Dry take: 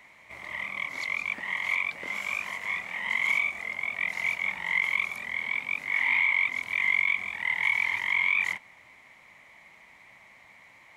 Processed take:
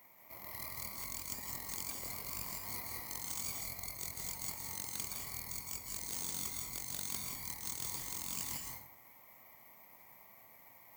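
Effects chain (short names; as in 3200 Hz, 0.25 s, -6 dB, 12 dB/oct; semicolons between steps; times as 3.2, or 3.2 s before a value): tracing distortion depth 0.46 ms; HPF 71 Hz 12 dB/oct; band shelf 2300 Hz -9.5 dB; notch 3800 Hz, Q 27; reverse; compressor 4:1, threshold -40 dBFS, peak gain reduction 16.5 dB; reverse; reverb RT60 0.60 s, pre-delay 0.151 s, DRR 1 dB; careless resampling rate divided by 3×, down none, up zero stuff; gain -6 dB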